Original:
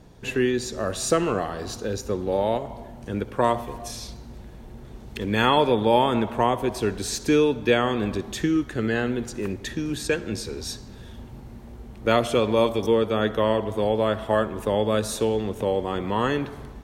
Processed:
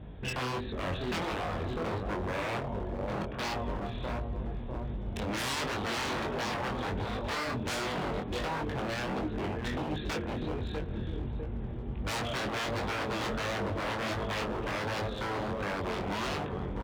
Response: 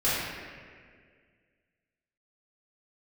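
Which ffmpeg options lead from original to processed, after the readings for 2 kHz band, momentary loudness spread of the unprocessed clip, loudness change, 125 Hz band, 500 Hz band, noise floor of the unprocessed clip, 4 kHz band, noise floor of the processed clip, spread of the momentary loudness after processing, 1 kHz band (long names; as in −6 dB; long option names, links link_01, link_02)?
−4.5 dB, 19 LU, −10.0 dB, −4.5 dB, −12.5 dB, −42 dBFS, −6.0 dB, −38 dBFS, 4 LU, −8.5 dB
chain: -filter_complex "[0:a]lowshelf=frequency=120:gain=10,asplit=2[link_01][link_02];[link_02]acompressor=threshold=-32dB:ratio=5,volume=2.5dB[link_03];[link_01][link_03]amix=inputs=2:normalize=0,aresample=8000,aresample=44100,asplit=2[link_04][link_05];[link_05]adelay=650,lowpass=frequency=1100:poles=1,volume=-8.5dB,asplit=2[link_06][link_07];[link_07]adelay=650,lowpass=frequency=1100:poles=1,volume=0.47,asplit=2[link_08][link_09];[link_09]adelay=650,lowpass=frequency=1100:poles=1,volume=0.47,asplit=2[link_10][link_11];[link_11]adelay=650,lowpass=frequency=1100:poles=1,volume=0.47,asplit=2[link_12][link_13];[link_13]adelay=650,lowpass=frequency=1100:poles=1,volume=0.47[link_14];[link_06][link_08][link_10][link_12][link_14]amix=inputs=5:normalize=0[link_15];[link_04][link_15]amix=inputs=2:normalize=0,aeval=exprs='0.0891*(abs(mod(val(0)/0.0891+3,4)-2)-1)':channel_layout=same,highpass=40,flanger=delay=19.5:depth=5.1:speed=1.4,volume=-4dB"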